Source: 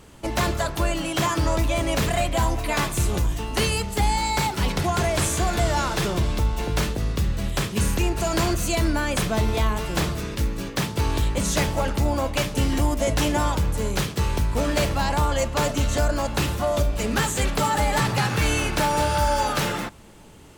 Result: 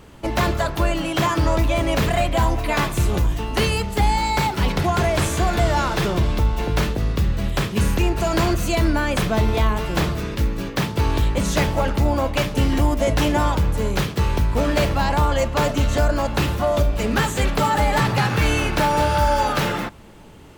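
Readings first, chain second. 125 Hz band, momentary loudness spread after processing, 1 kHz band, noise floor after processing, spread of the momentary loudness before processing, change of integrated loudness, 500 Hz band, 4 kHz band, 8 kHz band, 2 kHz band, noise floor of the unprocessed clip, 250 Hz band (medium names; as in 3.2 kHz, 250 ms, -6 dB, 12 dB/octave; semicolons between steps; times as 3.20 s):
+3.5 dB, 4 LU, +3.5 dB, -31 dBFS, 4 LU, +3.0 dB, +3.5 dB, +1.0 dB, -3.0 dB, +2.5 dB, -35 dBFS, +3.5 dB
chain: peaking EQ 8.7 kHz -7.5 dB 1.6 oct; trim +3.5 dB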